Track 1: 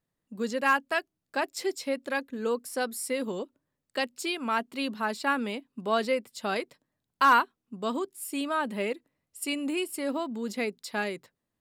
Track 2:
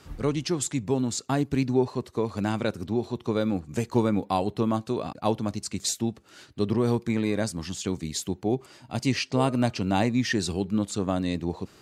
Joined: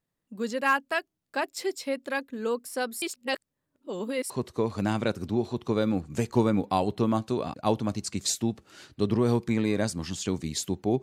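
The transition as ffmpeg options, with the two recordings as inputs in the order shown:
-filter_complex "[0:a]apad=whole_dur=11.02,atrim=end=11.02,asplit=2[a][b];[a]atrim=end=3.022[c];[b]atrim=start=3.018:end=4.302,asetpts=PTS-STARTPTS,areverse[d];[1:a]atrim=start=1.888:end=8.61[e];[c][d]acrossfade=d=0.004:c1=hsin:c2=hsin[f];[f][e]acrossfade=d=0.004:c1=hsin:c2=hsin"

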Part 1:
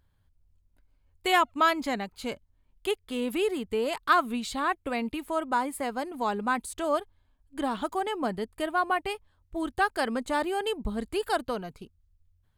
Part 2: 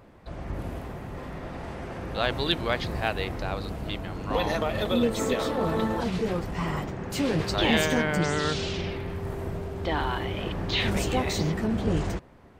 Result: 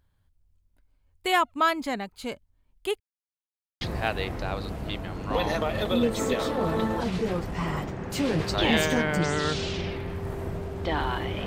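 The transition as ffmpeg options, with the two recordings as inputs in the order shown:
-filter_complex "[0:a]apad=whole_dur=11.46,atrim=end=11.46,asplit=2[a][b];[a]atrim=end=3,asetpts=PTS-STARTPTS,afade=t=out:st=2.996:d=0.004:c=hsin[c];[b]atrim=start=3:end=3.81,asetpts=PTS-STARTPTS,volume=0[d];[1:a]atrim=start=2.81:end=10.46,asetpts=PTS-STARTPTS,afade=t=in:d=0.004:c=hsin[e];[c][d][e]concat=n=3:v=0:a=1"

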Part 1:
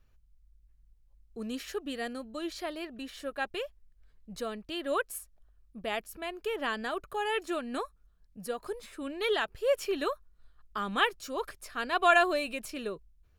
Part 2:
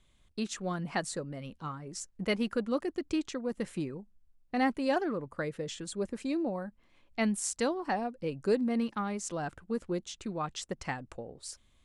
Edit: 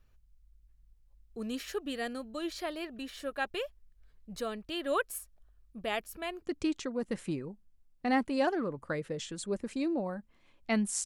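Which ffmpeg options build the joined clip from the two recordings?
-filter_complex "[0:a]apad=whole_dur=11.05,atrim=end=11.05,atrim=end=6.422[a];[1:a]atrim=start=2.908:end=7.54[b];[a][b]acrossfade=d=0.004:c1=hsin:c2=hsin"

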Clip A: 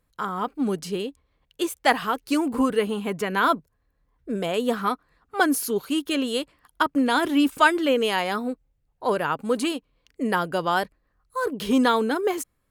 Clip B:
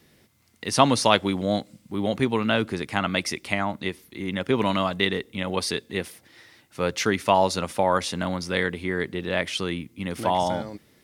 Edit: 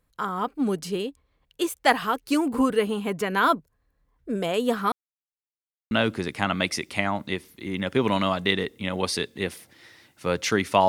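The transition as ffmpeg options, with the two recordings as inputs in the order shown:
-filter_complex "[0:a]apad=whole_dur=10.88,atrim=end=10.88,asplit=2[a][b];[a]atrim=end=4.92,asetpts=PTS-STARTPTS,afade=t=out:st=4.916:d=0.004:c=hsin[c];[b]atrim=start=4.92:end=5.91,asetpts=PTS-STARTPTS,volume=0[d];[1:a]atrim=start=2.45:end=7.42,asetpts=PTS-STARTPTS,afade=t=in:d=0.004:c=hsin[e];[c][d][e]concat=n=3:v=0:a=1"

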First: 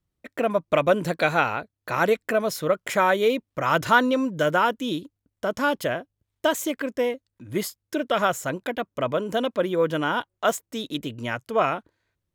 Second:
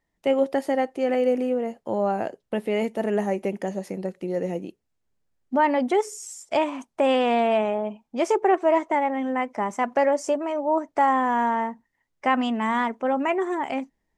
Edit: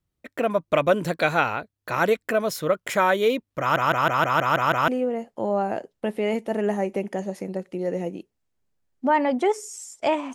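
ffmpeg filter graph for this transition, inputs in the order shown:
-filter_complex "[0:a]apad=whole_dur=10.34,atrim=end=10.34,asplit=8[a][b][c][d][e][f][g][h];[a]atrim=end=3.762[i];[b]atrim=start=3.598:end=3.762[j];[c]atrim=start=3.598:end=3.762[k];[d]atrim=start=3.598:end=3.762[l];[e]atrim=start=3.598:end=3.762[m];[f]atrim=start=3.598:end=3.762[n];[g]atrim=start=3.598:end=3.762[o];[h]atrim=start=3.598:end=3.762[p];[1:a]atrim=start=1.368:end=6.83[q];[i][j]acrossfade=d=0.004:c1=hsin:c2=hsin[r];[r][k]acrossfade=d=0.004:c1=hsin:c2=hsin[s];[s][l]acrossfade=d=0.004:c1=hsin:c2=hsin[t];[t][m]acrossfade=d=0.004:c1=hsin:c2=hsin[u];[u][n]acrossfade=d=0.004:c1=hsin:c2=hsin[v];[v][o]acrossfade=d=0.004:c1=hsin:c2=hsin[w];[w][p]acrossfade=d=0.004:c1=hsin:c2=hsin[x];[x][q]acrossfade=d=0.004:c1=hsin:c2=hsin"

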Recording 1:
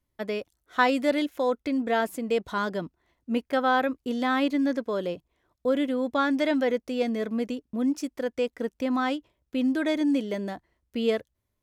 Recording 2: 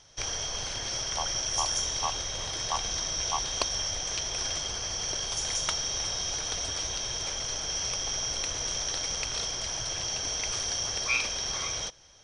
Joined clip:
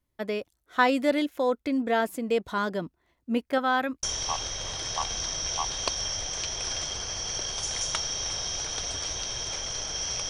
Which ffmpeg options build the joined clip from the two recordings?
-filter_complex "[0:a]asettb=1/sr,asplit=3[a][b][c];[a]atrim=end=3.584[d];[b]atrim=start=3.58:end=4.03,asetpts=PTS-STARTPTS,afade=t=in:d=0.004:c=qsin,afade=t=out:st=0.446:d=0.004:c=qsin,equalizer=f=450:t=o:w=1.3:g=-6.5[e];[c]atrim=start=4.026[f];[d][e]acrossfade=d=0.004:c1=hsin:c2=qsin[g];[g][f]acrossfade=d=0.004:c1=qsin:c2=hsin,apad=whole_dur=10.29,atrim=end=10.29,atrim=end=4.032[h];[1:a]atrim=start=1.768:end=8.03[i];[h][i]acrossfade=d=0.004:c1=hsin:c2=hsin"

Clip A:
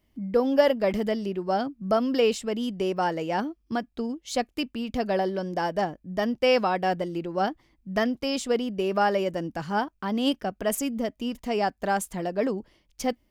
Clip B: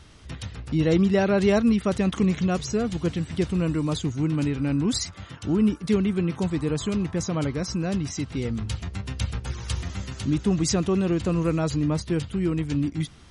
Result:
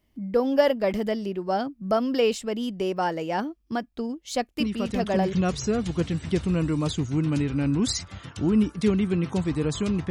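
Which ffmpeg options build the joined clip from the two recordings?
-filter_complex "[1:a]asplit=2[a][b];[0:a]apad=whole_dur=10.1,atrim=end=10.1,atrim=end=5.332[c];[b]atrim=start=2.388:end=7.16[d];[a]atrim=start=1.66:end=2.39,asetpts=PTS-STARTPTS,volume=-6.5dB,afade=t=in:d=0.004:c=hsin,afade=t=out:st=0.726:d=0.004:c=hsin,adelay=4600[e];[c][d]acrossfade=d=0.004:c1=hsin:c2=hsin[f];[f][e]amix=inputs=2:normalize=0"

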